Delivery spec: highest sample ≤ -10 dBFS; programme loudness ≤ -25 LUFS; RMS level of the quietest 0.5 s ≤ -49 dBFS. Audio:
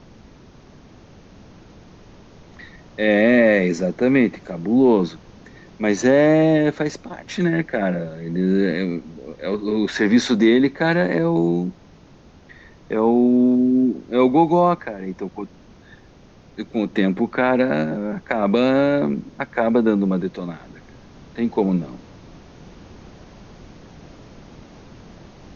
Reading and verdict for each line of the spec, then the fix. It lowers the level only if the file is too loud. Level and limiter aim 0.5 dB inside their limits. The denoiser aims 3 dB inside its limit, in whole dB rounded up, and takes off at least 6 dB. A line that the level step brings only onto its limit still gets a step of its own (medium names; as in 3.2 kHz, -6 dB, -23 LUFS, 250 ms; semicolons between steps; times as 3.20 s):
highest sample -4.0 dBFS: fail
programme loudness -19.0 LUFS: fail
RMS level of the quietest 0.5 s -48 dBFS: fail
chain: trim -6.5 dB